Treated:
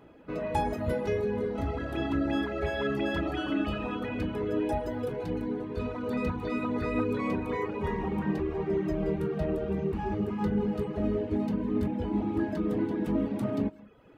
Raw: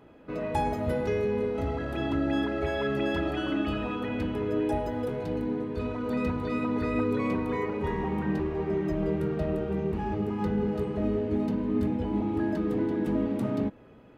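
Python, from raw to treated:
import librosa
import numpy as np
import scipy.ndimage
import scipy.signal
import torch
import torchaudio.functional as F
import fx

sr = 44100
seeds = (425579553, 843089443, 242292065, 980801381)

y = fx.rev_gated(x, sr, seeds[0], gate_ms=230, shape='flat', drr_db=10.0)
y = fx.dereverb_blind(y, sr, rt60_s=0.57)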